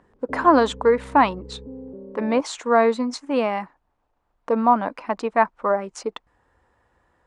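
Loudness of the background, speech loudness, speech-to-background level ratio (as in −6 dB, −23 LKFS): −39.0 LKFS, −21.5 LKFS, 17.5 dB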